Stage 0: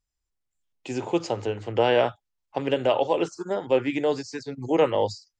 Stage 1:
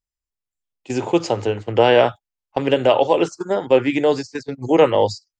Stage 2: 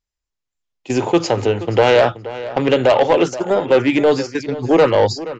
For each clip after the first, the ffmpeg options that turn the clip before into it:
ffmpeg -i in.wav -af "agate=range=-14dB:threshold=-34dB:ratio=16:detection=peak,volume=7dB" out.wav
ffmpeg -i in.wav -filter_complex "[0:a]aresample=16000,asoftclip=type=tanh:threshold=-11.5dB,aresample=44100,asplit=2[link_01][link_02];[link_02]adelay=476,lowpass=frequency=4500:poles=1,volume=-15dB,asplit=2[link_03][link_04];[link_04]adelay=476,lowpass=frequency=4500:poles=1,volume=0.17[link_05];[link_01][link_03][link_05]amix=inputs=3:normalize=0,volume=5.5dB" out.wav

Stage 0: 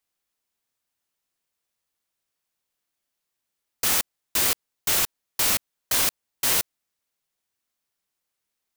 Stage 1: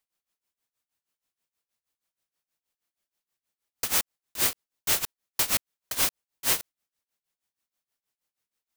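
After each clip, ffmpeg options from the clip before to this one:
ffmpeg -i in.wav -af "tremolo=f=6.3:d=0.89" out.wav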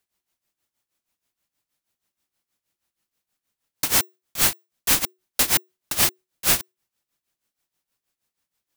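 ffmpeg -i in.wav -af "afreqshift=-370,volume=5.5dB" out.wav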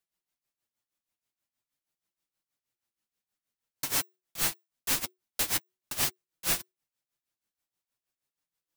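ffmpeg -i in.wav -af "flanger=delay=6:depth=3.7:regen=-20:speed=0.46:shape=sinusoidal,volume=-5.5dB" out.wav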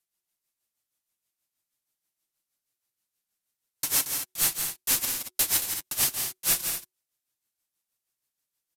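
ffmpeg -i in.wav -af "aemphasis=mode=production:type=cd,aecho=1:1:169.1|227.4:0.447|0.316,aresample=32000,aresample=44100,volume=-1dB" out.wav

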